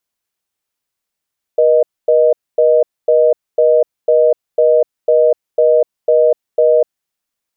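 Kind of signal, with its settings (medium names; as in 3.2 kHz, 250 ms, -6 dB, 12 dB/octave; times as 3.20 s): call progress tone reorder tone, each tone -10 dBFS 5.45 s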